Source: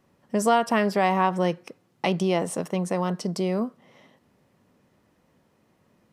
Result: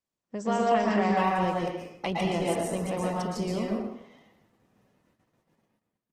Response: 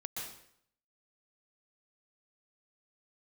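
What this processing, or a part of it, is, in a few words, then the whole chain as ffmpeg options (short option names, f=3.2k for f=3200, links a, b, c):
speakerphone in a meeting room: -filter_complex "[1:a]atrim=start_sample=2205[a];[0:a][a]afir=irnorm=-1:irlink=0,asplit=2[b][c];[c]adelay=110,highpass=300,lowpass=3.4k,asoftclip=type=hard:threshold=-18.5dB,volume=-8dB[d];[b][d]amix=inputs=2:normalize=0,dynaudnorm=f=180:g=7:m=4dB,agate=range=-21dB:threshold=-59dB:ratio=16:detection=peak,volume=-6.5dB" -ar 48000 -c:a libopus -b:a 16k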